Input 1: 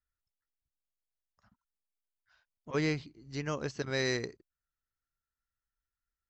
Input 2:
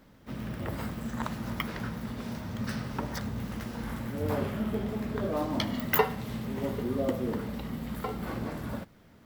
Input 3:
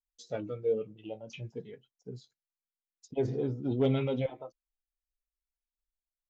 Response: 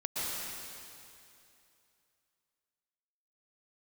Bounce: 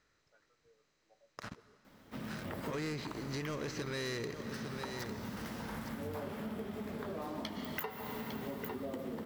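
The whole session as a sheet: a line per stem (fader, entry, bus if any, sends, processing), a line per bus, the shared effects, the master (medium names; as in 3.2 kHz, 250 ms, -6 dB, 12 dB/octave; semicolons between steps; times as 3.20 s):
-1.0 dB, 0.00 s, send -23 dB, echo send -14.5 dB, spectral levelling over time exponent 0.6; waveshaping leveller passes 3
-2.5 dB, 1.85 s, send -11.5 dB, echo send -10.5 dB, bass shelf 120 Hz -9 dB; hum notches 60/120/180/240/300/360/420/480/540/600 Hz
-19.0 dB, 0.00 s, no send, no echo send, wah-wah 0.45 Hz 390–1600 Hz, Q 4.1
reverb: on, RT60 2.7 s, pre-delay 108 ms
echo: delay 854 ms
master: compression 6:1, threshold -38 dBFS, peak gain reduction 17 dB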